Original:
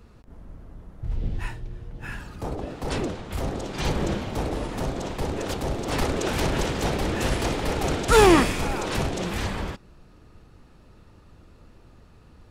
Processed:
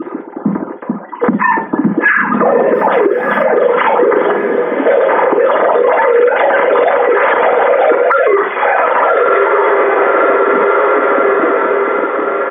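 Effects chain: sine-wave speech; 4.31–4.86 vowel filter i; dynamic EQ 510 Hz, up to -5 dB, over -35 dBFS, Q 1.1; 2.74–3.44 requantised 10-bit, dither none; bell 3000 Hz -9 dB 0.58 oct; doubler 50 ms -9.5 dB; diffused feedback echo 1.201 s, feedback 52%, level -10.5 dB; reverb RT60 0.35 s, pre-delay 3 ms, DRR -7.5 dB; compressor 16:1, threshold -17 dBFS, peak gain reduction 22.5 dB; maximiser +14.5 dB; gain -1 dB

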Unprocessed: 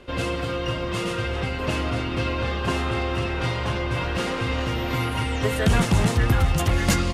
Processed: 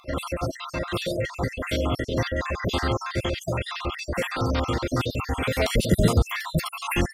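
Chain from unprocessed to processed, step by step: random spectral dropouts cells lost 54%; formant shift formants +4 st; gain +2 dB

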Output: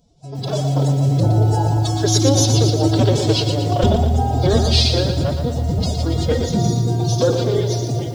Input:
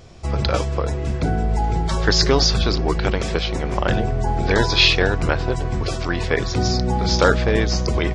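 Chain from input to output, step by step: Doppler pass-by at 3.59, 7 m/s, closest 5.8 m; band shelf 1600 Hz -15 dB; AGC gain up to 16 dB; formant-preserving pitch shift +11.5 st; lo-fi delay 0.117 s, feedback 55%, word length 7-bit, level -7 dB; gain -1 dB

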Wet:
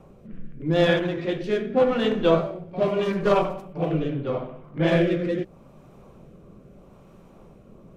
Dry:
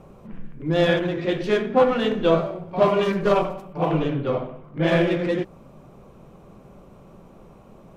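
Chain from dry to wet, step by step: rotary speaker horn 0.8 Hz

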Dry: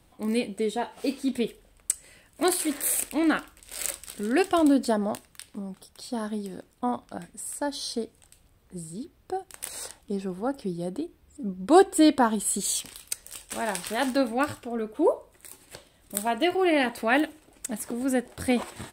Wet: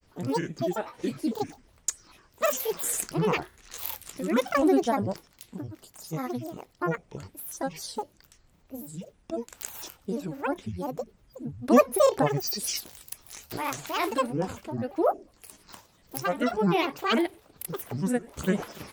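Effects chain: dynamic EQ 3900 Hz, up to -4 dB, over -44 dBFS, Q 0.95; grains, grains 20/s, spray 25 ms, pitch spread up and down by 12 st

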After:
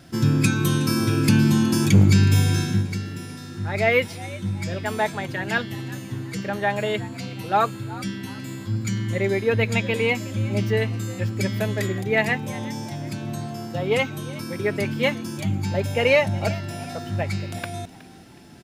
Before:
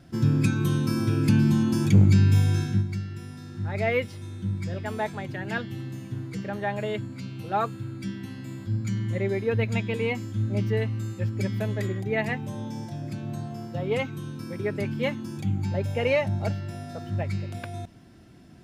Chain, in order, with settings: tilt +1.5 dB/oct; frequency-shifting echo 0.368 s, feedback 37%, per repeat +79 Hz, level -18.5 dB; gain +6.5 dB

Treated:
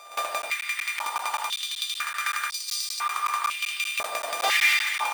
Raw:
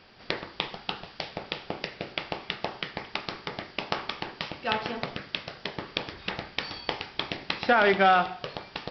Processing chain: sample sorter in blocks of 64 samples; in parallel at -10.5 dB: wrapped overs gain 23.5 dB; on the sum: overdrive pedal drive 11 dB, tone 5300 Hz, clips at -6 dBFS; wavefolder -20.5 dBFS; on a send at -3 dB: reverb RT60 5.4 s, pre-delay 29 ms; on the sum: speed mistake 45 rpm record played at 78 rpm; speakerphone echo 80 ms, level -6 dB; crackling interface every 0.19 s, samples 512, zero, from 0.42; stepped high-pass 2 Hz 640–4800 Hz

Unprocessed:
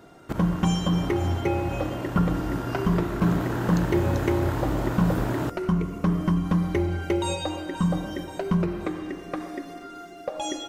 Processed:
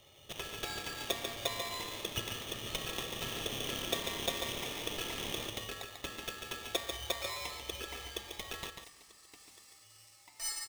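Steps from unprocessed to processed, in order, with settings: band-pass 2000 Hz, Q 4.9, from 8.7 s 7100 Hz; echo 0.143 s -6 dB; polarity switched at an audio rate 1500 Hz; gain +6 dB

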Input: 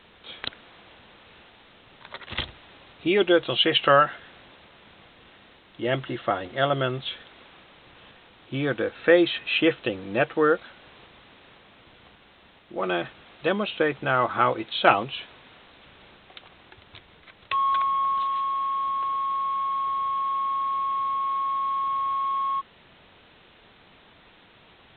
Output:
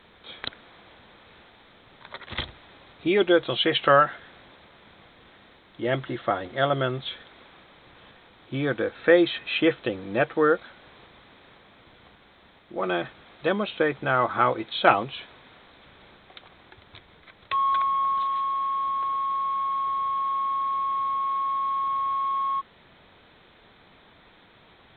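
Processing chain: bell 2800 Hz -8.5 dB 0.2 oct

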